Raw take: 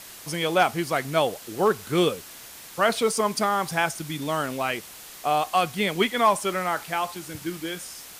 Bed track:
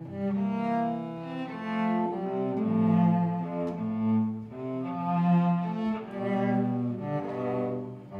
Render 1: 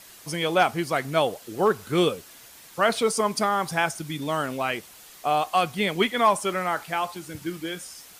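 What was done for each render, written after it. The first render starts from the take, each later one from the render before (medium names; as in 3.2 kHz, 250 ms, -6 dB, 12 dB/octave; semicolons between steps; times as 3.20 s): noise reduction 6 dB, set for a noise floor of -44 dBFS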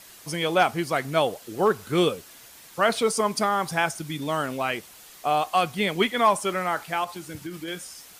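7.04–7.68 s: compression, threshold -30 dBFS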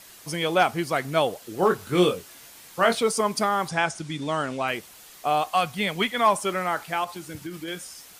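1.60–2.95 s: doubling 22 ms -6 dB; 3.68–4.68 s: low-pass 8.8 kHz 24 dB/octave; 5.51–6.26 s: peaking EQ 350 Hz -7 dB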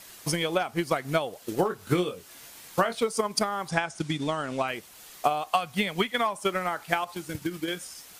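compression 6:1, threshold -26 dBFS, peak gain reduction 11.5 dB; transient shaper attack +8 dB, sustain -3 dB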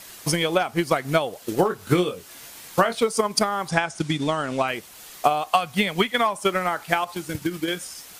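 trim +5 dB; peak limiter -3 dBFS, peak gain reduction 1.5 dB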